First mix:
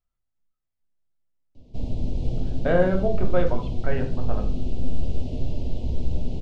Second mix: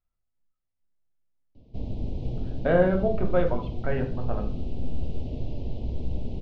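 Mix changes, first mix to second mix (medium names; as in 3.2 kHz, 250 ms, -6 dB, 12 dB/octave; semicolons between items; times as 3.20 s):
background: send -11.0 dB; master: add distance through air 140 m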